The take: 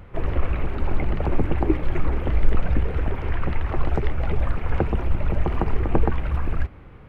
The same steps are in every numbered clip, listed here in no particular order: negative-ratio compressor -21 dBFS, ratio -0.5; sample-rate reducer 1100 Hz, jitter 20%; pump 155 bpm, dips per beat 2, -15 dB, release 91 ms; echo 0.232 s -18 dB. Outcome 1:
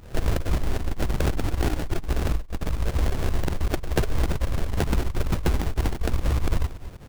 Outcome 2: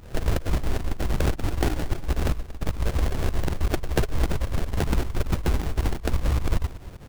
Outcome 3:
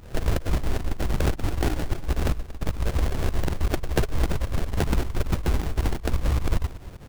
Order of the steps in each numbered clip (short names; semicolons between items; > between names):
sample-rate reducer > echo > pump > negative-ratio compressor; negative-ratio compressor > sample-rate reducer > echo > pump; sample-rate reducer > negative-ratio compressor > echo > pump